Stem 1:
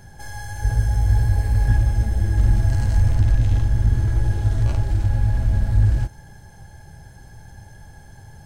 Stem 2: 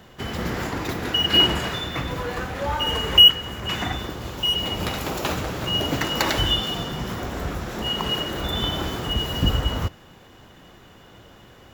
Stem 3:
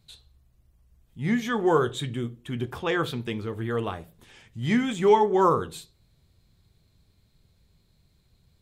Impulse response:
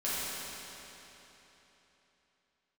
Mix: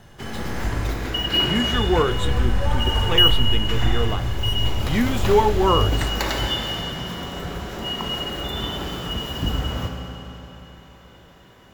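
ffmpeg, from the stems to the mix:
-filter_complex "[0:a]volume=0.335,asplit=3[s0][s1][s2];[s0]atrim=end=0.91,asetpts=PTS-STARTPTS,afade=t=out:st=0.906:d=0.004:c=hsin[s3];[s1]atrim=start=0.91:end=1.73,asetpts=PTS-STARTPTS,volume=0[s4];[s2]atrim=start=1.73,asetpts=PTS-STARTPTS,afade=t=in:d=0.004:c=hsin[s5];[s3][s4][s5]concat=n=3:v=0:a=1,asplit=2[s6][s7];[s7]volume=0.422[s8];[1:a]volume=0.501,asplit=2[s9][s10];[s10]volume=0.422[s11];[2:a]adelay=250,volume=1.19[s12];[3:a]atrim=start_sample=2205[s13];[s8][s11]amix=inputs=2:normalize=0[s14];[s14][s13]afir=irnorm=-1:irlink=0[s15];[s6][s9][s12][s15]amix=inputs=4:normalize=0"

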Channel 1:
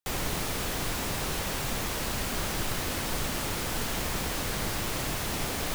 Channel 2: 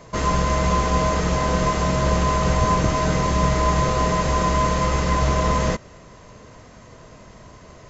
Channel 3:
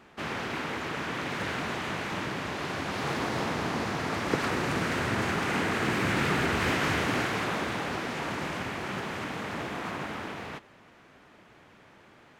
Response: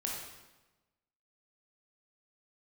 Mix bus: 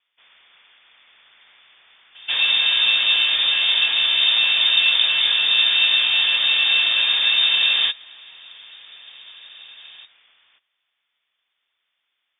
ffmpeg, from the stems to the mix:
-filter_complex "[1:a]adelay=2150,volume=1.19[s0];[2:a]aeval=exprs='clip(val(0),-1,0.0376)':c=same,volume=0.1[s1];[s0][s1]amix=inputs=2:normalize=0,lowpass=f=3100:t=q:w=0.5098,lowpass=f=3100:t=q:w=0.6013,lowpass=f=3100:t=q:w=0.9,lowpass=f=3100:t=q:w=2.563,afreqshift=-3700"

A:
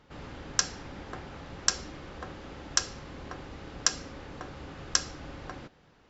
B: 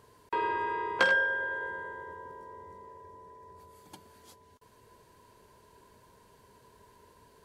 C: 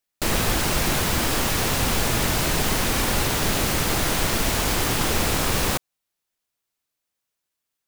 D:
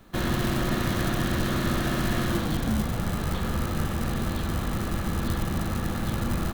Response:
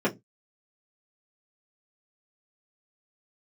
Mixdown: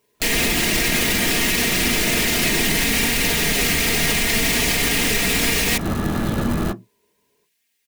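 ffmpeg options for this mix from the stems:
-filter_complex "[0:a]adelay=150,volume=0.211[s0];[1:a]volume=0.133,asplit=2[s1][s2];[s2]volume=0.282[s3];[2:a]highshelf=f=1600:t=q:w=3:g=6.5,aecho=1:1:4.3:0.97,volume=1.19,asplit=2[s4][s5];[s5]volume=0.106[s6];[3:a]acontrast=64,alimiter=limit=0.188:level=0:latency=1:release=49,adelay=200,volume=0.944,asplit=2[s7][s8];[s8]volume=0.141[s9];[4:a]atrim=start_sample=2205[s10];[s3][s6][s9]amix=inputs=3:normalize=0[s11];[s11][s10]afir=irnorm=-1:irlink=0[s12];[s0][s1][s4][s7][s12]amix=inputs=5:normalize=0,alimiter=limit=0.335:level=0:latency=1:release=111"

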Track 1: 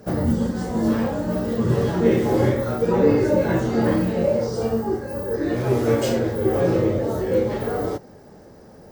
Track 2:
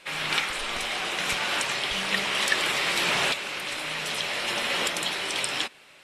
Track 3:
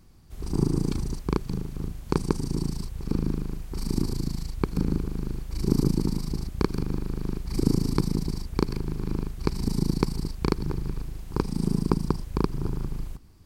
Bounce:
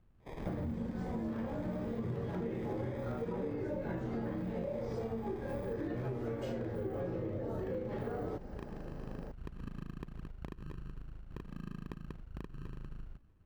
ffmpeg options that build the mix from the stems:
-filter_complex "[0:a]acompressor=threshold=0.0355:ratio=2,adelay=400,volume=0.708[s0];[1:a]highshelf=f=5000:g=-11,aecho=1:1:2:0.73,adelay=200,volume=0.178[s1];[2:a]acompressor=threshold=0.0355:ratio=2,volume=0.188[s2];[s1][s2]amix=inputs=2:normalize=0,acrusher=samples=31:mix=1:aa=0.000001,acompressor=threshold=0.0126:ratio=6,volume=1[s3];[s0][s3]amix=inputs=2:normalize=0,bass=f=250:g=3,treble=f=4000:g=-13,acompressor=threshold=0.0178:ratio=6"

